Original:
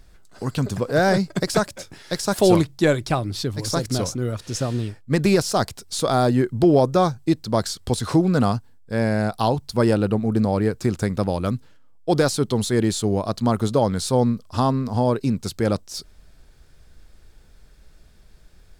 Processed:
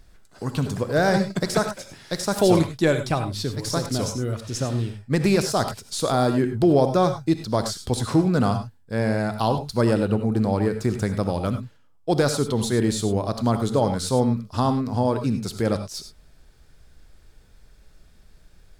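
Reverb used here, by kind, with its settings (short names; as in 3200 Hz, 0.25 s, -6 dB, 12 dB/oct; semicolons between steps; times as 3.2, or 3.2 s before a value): non-linear reverb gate 0.12 s rising, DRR 7.5 dB; gain -2 dB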